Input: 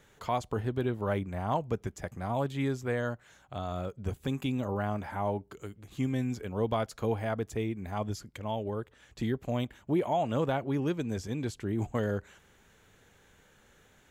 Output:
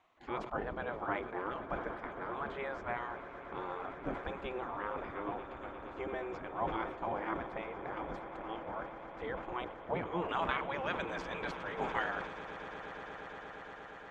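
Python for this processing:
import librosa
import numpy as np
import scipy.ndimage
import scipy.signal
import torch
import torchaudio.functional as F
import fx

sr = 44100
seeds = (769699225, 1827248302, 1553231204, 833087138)

y = fx.spec_gate(x, sr, threshold_db=-15, keep='weak')
y = fx.lowpass(y, sr, hz=fx.steps((0.0, 1200.0), (10.29, 2300.0)), slope=12)
y = fx.echo_swell(y, sr, ms=117, loudest=8, wet_db=-17.5)
y = fx.sustainer(y, sr, db_per_s=75.0)
y = y * librosa.db_to_amplitude(8.5)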